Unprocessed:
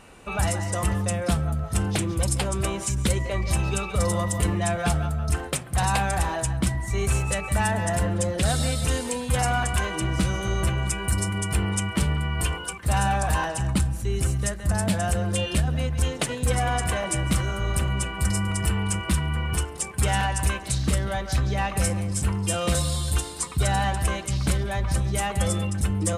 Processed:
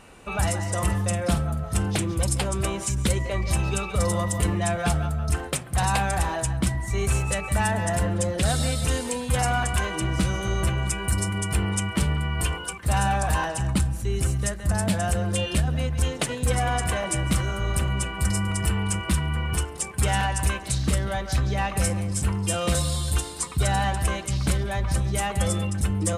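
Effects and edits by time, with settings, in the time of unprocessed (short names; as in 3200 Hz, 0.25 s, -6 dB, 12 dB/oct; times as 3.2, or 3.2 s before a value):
0.66–1.75 doubler 49 ms -10.5 dB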